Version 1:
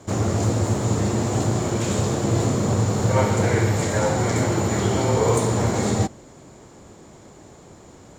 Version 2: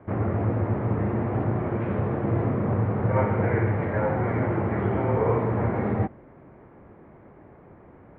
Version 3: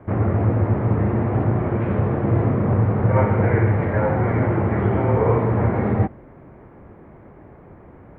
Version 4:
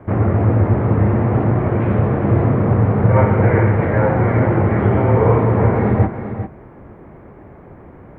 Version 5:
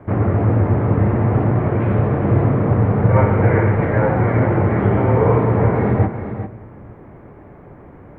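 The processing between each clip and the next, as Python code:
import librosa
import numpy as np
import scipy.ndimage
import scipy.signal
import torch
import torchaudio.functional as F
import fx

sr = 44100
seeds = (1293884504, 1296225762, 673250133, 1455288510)

y1 = scipy.signal.sosfilt(scipy.signal.butter(6, 2200.0, 'lowpass', fs=sr, output='sos'), x)
y1 = y1 * 10.0 ** (-3.5 / 20.0)
y2 = fx.low_shelf(y1, sr, hz=90.0, db=6.5)
y2 = y2 * 10.0 ** (4.0 / 20.0)
y3 = y2 + 10.0 ** (-9.5 / 20.0) * np.pad(y2, (int(397 * sr / 1000.0), 0))[:len(y2)]
y3 = y3 * 10.0 ** (4.0 / 20.0)
y4 = fx.room_shoebox(y3, sr, seeds[0], volume_m3=2000.0, walls='mixed', distance_m=0.35)
y4 = y4 * 10.0 ** (-1.0 / 20.0)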